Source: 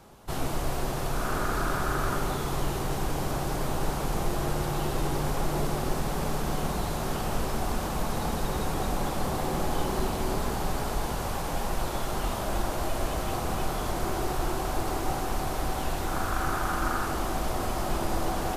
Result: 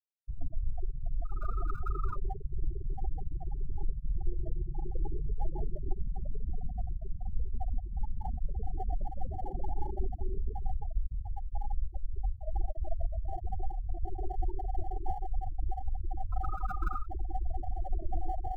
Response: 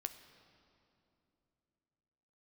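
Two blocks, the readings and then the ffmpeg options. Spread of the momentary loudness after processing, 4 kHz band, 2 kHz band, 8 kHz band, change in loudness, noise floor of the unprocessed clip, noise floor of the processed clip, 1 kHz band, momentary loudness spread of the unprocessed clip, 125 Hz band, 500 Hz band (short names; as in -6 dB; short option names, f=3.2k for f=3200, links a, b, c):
3 LU, under -35 dB, under -20 dB, under -40 dB, -8.5 dB, -31 dBFS, -42 dBFS, -11.5 dB, 3 LU, -6.0 dB, -16.5 dB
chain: -filter_complex "[0:a]afftfilt=real='re*gte(hypot(re,im),0.158)':imag='im*gte(hypot(re,im),0.158)':win_size=1024:overlap=0.75,acrossover=split=100|1700[a][b][c];[b]bandpass=f=1k:t=q:w=1.1:csg=0[d];[c]acrusher=samples=35:mix=1:aa=0.000001[e];[a][d][e]amix=inputs=3:normalize=0,volume=1dB"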